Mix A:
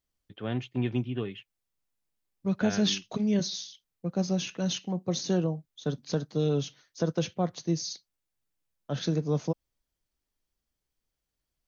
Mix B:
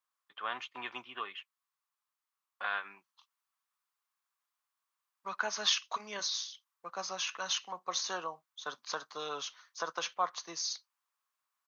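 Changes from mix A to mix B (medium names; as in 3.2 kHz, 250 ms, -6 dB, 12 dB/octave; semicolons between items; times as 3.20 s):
second voice: entry +2.80 s; master: add resonant high-pass 1.1 kHz, resonance Q 4.5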